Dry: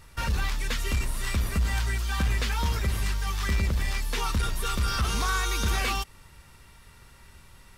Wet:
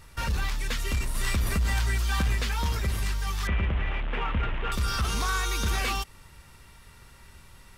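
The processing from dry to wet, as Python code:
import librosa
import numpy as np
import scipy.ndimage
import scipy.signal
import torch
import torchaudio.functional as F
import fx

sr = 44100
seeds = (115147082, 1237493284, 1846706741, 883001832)

p1 = fx.delta_mod(x, sr, bps=16000, step_db=-29.0, at=(3.47, 4.72))
p2 = 10.0 ** (-32.0 / 20.0) * np.tanh(p1 / 10.0 ** (-32.0 / 20.0))
p3 = p1 + F.gain(torch.from_numpy(p2), -8.5).numpy()
p4 = fx.env_flatten(p3, sr, amount_pct=50, at=(1.15, 2.35))
y = F.gain(torch.from_numpy(p4), -2.0).numpy()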